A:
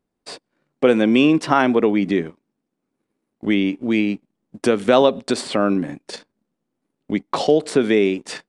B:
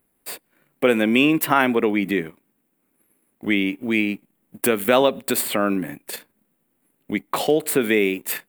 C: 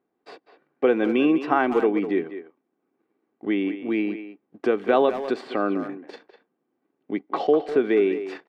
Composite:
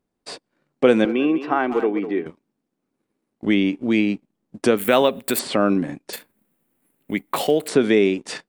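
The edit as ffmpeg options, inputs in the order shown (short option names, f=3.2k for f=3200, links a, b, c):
-filter_complex "[1:a]asplit=2[a][b];[0:a]asplit=4[c][d][e][f];[c]atrim=end=1.052[g];[2:a]atrim=start=1.048:end=2.262[h];[d]atrim=start=2.258:end=4.772[i];[a]atrim=start=4.768:end=5.392[j];[e]atrim=start=5.388:end=6.132[k];[b]atrim=start=6.128:end=7.682[l];[f]atrim=start=7.678[m];[g][h]acrossfade=d=0.004:c1=hsin:c2=hsin[n];[n][i]acrossfade=d=0.004:c1=hsin:c2=hsin[o];[o][j]acrossfade=d=0.004:c1=hsin:c2=hsin[p];[p][k]acrossfade=d=0.004:c1=hsin:c2=hsin[q];[q][l]acrossfade=d=0.004:c1=hsin:c2=hsin[r];[r][m]acrossfade=d=0.004:c1=hsin:c2=hsin"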